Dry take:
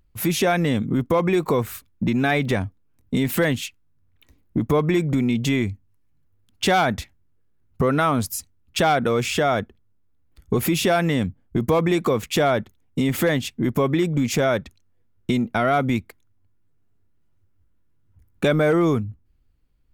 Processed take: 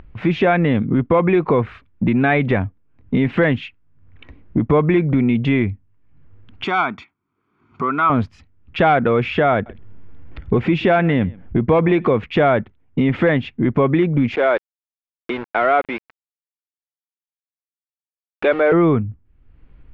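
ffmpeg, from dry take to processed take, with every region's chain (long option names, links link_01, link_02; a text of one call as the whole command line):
ffmpeg -i in.wav -filter_complex "[0:a]asettb=1/sr,asplit=3[link_01][link_02][link_03];[link_01]atrim=end=6.644[link_04];[link_02]atrim=start=6.64:end=8.1,asetpts=PTS-STARTPTS,afade=type=in:duration=0.004:curve=qsin,afade=type=out:start_time=1.456:duration=0.004:curve=qsin,highpass=410,equalizer=frequency=500:width_type=q:width=4:gain=-7,equalizer=frequency=820:width_type=q:width=4:gain=-7,equalizer=frequency=2000:width_type=q:width=4:gain=-9,equalizer=frequency=3400:width_type=q:width=4:gain=-5,equalizer=frequency=7000:width_type=q:width=4:gain=8,lowpass=frequency=9600:width=0.5412,lowpass=frequency=9600:width=1.3066,aecho=1:1:0.9:0.7,atrim=end_sample=64386[link_05];[link_03]atrim=start=8.096[link_06];[link_04][link_05]acrossfade=duration=0.004:curve1=hsin:curve2=qsin[link_07];[link_07][link_06]acrossfade=duration=0.004:curve1=qsin:curve2=hsin,asettb=1/sr,asplit=3[link_08][link_09][link_10];[link_08]atrim=end=9.534[link_11];[link_09]atrim=start=9.53:end=12.18,asetpts=PTS-STARTPTS,afade=type=in:duration=0.004:curve=qsin,afade=type=out:start_time=2.646:duration=0.004:curve=qsin,equalizer=frequency=1200:width_type=o:width=0.2:gain=-3.5,acompressor=mode=upward:threshold=-23dB:ratio=2.5:attack=3.2:release=140:knee=2.83:detection=peak,aecho=1:1:130:0.0668,atrim=end_sample=116865[link_12];[link_10]atrim=start=12.176[link_13];[link_11][link_12]acrossfade=duration=0.004:curve1=hsin:curve2=qsin[link_14];[link_14][link_13]acrossfade=duration=0.004:curve1=qsin:curve2=hsin,asettb=1/sr,asplit=3[link_15][link_16][link_17];[link_15]atrim=end=14.354[link_18];[link_16]atrim=start=14.35:end=18.72,asetpts=PTS-STARTPTS,afade=type=in:duration=0.004:curve=qsin,afade=type=out:start_time=4.366:duration=0.004:curve=qsin,highpass=frequency=340:width=0.5412,highpass=frequency=340:width=1.3066,aeval=exprs='val(0)*gte(abs(val(0)),0.0335)':channel_layout=same[link_19];[link_17]atrim=start=18.716[link_20];[link_18][link_19]acrossfade=duration=0.004:curve1=hsin:curve2=qsin[link_21];[link_21][link_20]acrossfade=duration=0.004:curve1=qsin:curve2=hsin,lowpass=frequency=2700:width=0.5412,lowpass=frequency=2700:width=1.3066,acompressor=mode=upward:threshold=-34dB:ratio=2.5,volume=4.5dB" out.wav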